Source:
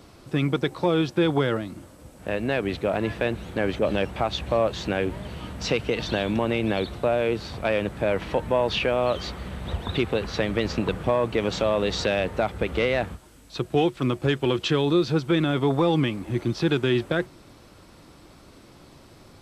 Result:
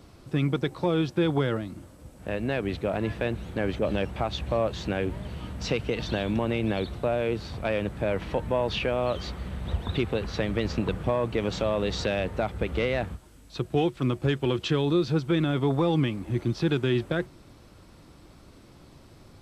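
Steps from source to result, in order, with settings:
low-shelf EQ 190 Hz +6.5 dB
level −4.5 dB

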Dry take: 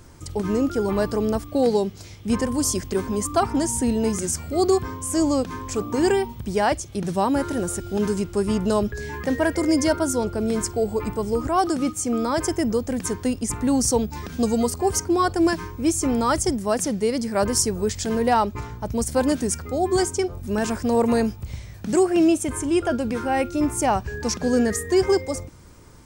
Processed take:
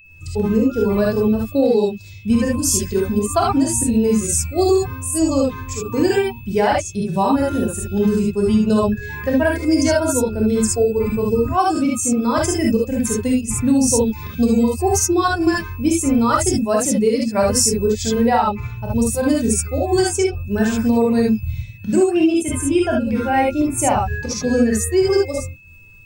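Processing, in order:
spectral dynamics exaggerated over time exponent 1.5
fake sidechain pumping 94 BPM, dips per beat 1, −18 dB, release 157 ms
reverb whose tail is shaped and stops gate 90 ms rising, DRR −2.5 dB
downward compressor 4 to 1, threshold −19 dBFS, peak gain reduction 8.5 dB
steady tone 2,600 Hz −51 dBFS
level +6.5 dB

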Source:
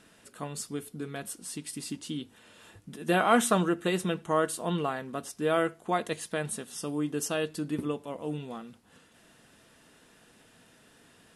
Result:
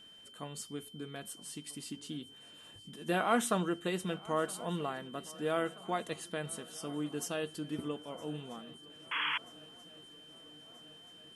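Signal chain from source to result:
feedback echo with a long and a short gap by turns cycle 1,283 ms, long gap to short 3 to 1, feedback 63%, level −22 dB
steady tone 3,100 Hz −47 dBFS
sound drawn into the spectrogram noise, 0:09.11–0:09.38, 860–3,400 Hz −27 dBFS
level −6.5 dB

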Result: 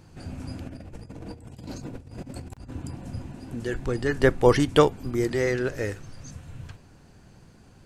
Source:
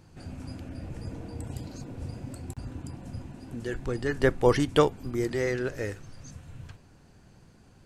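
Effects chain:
0:00.66–0:02.71: compressor whose output falls as the input rises −42 dBFS, ratio −0.5
level +3.5 dB

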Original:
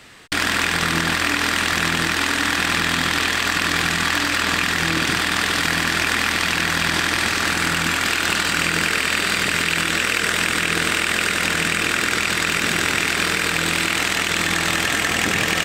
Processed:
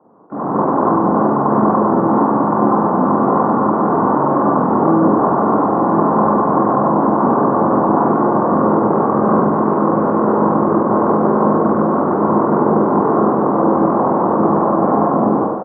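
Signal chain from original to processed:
Chebyshev band-pass filter 200–1,100 Hz, order 5
brickwall limiter −23 dBFS, peak gain reduction 10 dB
automatic gain control gain up to 16 dB
pitch-shifted copies added −12 semitones −15 dB, −5 semitones −7 dB, +4 semitones −14 dB
double-tracking delay 43 ms −2 dB
single-tap delay 99 ms −10.5 dB
level −1 dB

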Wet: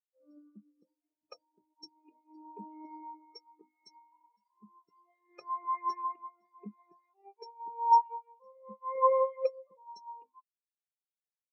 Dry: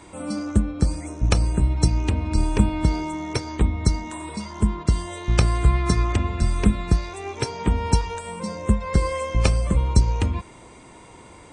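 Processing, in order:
high-pass filter 500 Hz 12 dB per octave
single-tap delay 294 ms −22.5 dB
every bin expanded away from the loudest bin 4 to 1
level −8 dB

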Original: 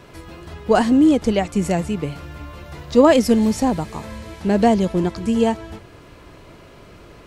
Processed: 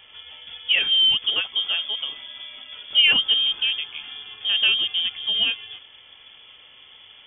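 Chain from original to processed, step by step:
voice inversion scrambler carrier 3,400 Hz
level −5 dB

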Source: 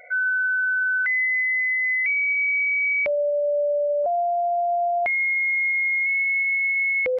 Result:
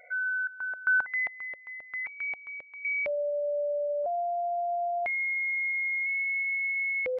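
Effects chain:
0:00.47–0:02.85: low-pass on a step sequencer 7.5 Hz 560–1,500 Hz
level −7.5 dB

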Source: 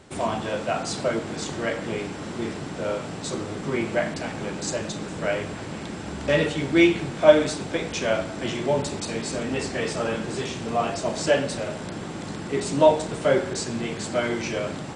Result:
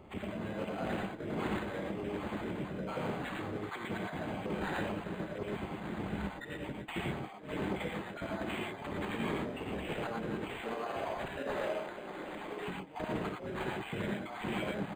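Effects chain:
time-frequency cells dropped at random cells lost 33%
0:10.53–0:12.60: high-pass filter 430 Hz 12 dB per octave
compressor whose output falls as the input rises −31 dBFS, ratio −0.5
amplitude tremolo 1.3 Hz, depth 39%
echo with shifted repeats 280 ms, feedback 63%, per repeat +70 Hz, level −20 dB
reverb whose tail is shaped and stops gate 140 ms rising, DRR 0 dB
linearly interpolated sample-rate reduction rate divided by 8×
level −7.5 dB

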